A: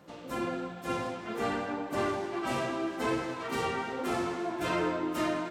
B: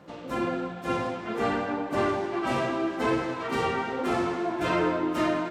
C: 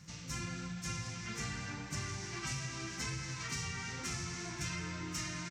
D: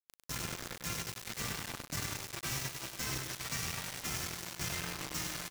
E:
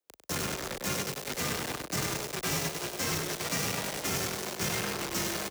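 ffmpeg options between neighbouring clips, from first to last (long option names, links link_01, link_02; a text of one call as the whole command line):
ffmpeg -i in.wav -af "lowpass=frequency=3900:poles=1,volume=5dB" out.wav
ffmpeg -i in.wav -af "firequalizer=gain_entry='entry(150,0);entry(250,-20);entry(590,-28);entry(960,-19);entry(2100,-5);entry(3300,-8);entry(5800,12);entry(11000,-4)':delay=0.05:min_phase=1,acompressor=threshold=-41dB:ratio=6,volume=4.5dB" out.wav
ffmpeg -i in.wav -af "acrusher=bits=5:mix=0:aa=0.000001,aecho=1:1:99:0.473" out.wav
ffmpeg -i in.wav -filter_complex "[0:a]acrossover=split=340|580|3800[link_01][link_02][link_03][link_04];[link_02]aeval=exprs='0.0075*sin(PI/2*3.98*val(0)/0.0075)':channel_layout=same[link_05];[link_01][link_05][link_03][link_04]amix=inputs=4:normalize=0,afreqshift=27,volume=5.5dB" out.wav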